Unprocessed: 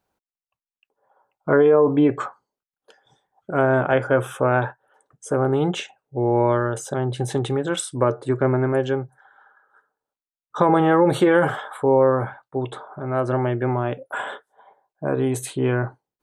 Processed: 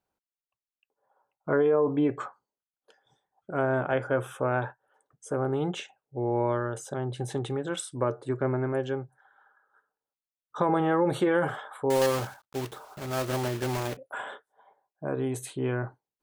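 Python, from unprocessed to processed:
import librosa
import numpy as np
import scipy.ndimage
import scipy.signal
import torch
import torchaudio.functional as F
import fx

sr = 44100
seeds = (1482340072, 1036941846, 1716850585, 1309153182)

y = fx.block_float(x, sr, bits=3, at=(11.9, 13.97))
y = y * librosa.db_to_amplitude(-8.0)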